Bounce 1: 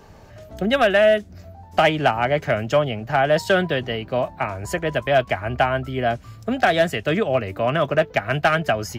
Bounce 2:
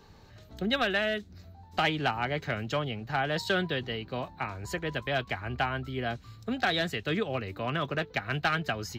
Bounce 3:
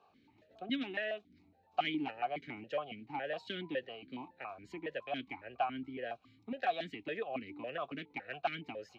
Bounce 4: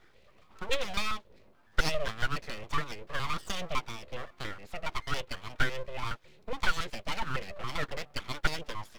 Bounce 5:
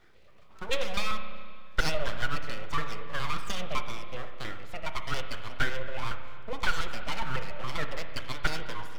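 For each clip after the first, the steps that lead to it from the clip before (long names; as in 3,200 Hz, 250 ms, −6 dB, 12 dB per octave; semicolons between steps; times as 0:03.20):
thirty-one-band graphic EQ 630 Hz −10 dB, 4,000 Hz +11 dB, 10,000 Hz −8 dB; level −8 dB
formant filter that steps through the vowels 7.2 Hz; level +2.5 dB
full-wave rectification; level +9 dB
spring reverb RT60 1.9 s, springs 32/55 ms, chirp 70 ms, DRR 6.5 dB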